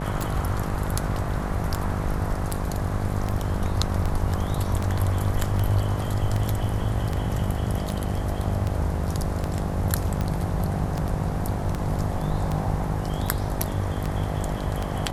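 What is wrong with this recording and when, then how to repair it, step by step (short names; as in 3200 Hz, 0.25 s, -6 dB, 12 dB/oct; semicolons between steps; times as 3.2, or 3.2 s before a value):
buzz 50 Hz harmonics 17 -30 dBFS
tick 78 rpm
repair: de-click; de-hum 50 Hz, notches 17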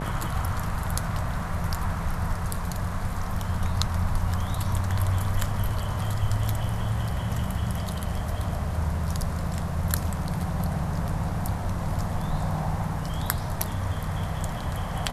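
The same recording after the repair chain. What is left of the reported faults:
none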